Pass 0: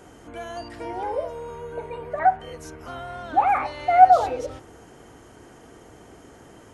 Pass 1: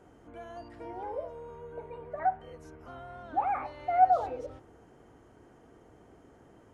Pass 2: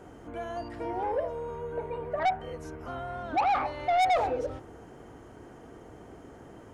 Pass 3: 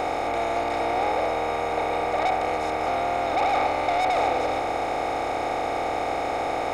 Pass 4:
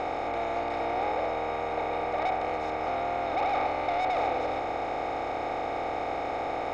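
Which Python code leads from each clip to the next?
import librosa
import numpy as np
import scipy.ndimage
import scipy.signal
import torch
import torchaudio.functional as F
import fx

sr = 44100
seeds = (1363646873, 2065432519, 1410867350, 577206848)

y1 = fx.high_shelf(x, sr, hz=2300.0, db=-11.5)
y1 = y1 * librosa.db_to_amplitude(-8.5)
y2 = 10.0 ** (-29.5 / 20.0) * np.tanh(y1 / 10.0 ** (-29.5 / 20.0))
y2 = y2 * librosa.db_to_amplitude(8.5)
y3 = fx.bin_compress(y2, sr, power=0.2)
y3 = y3 * librosa.db_to_amplitude(-3.5)
y4 = fx.air_absorb(y3, sr, metres=110.0)
y4 = y4 * librosa.db_to_amplitude(-4.5)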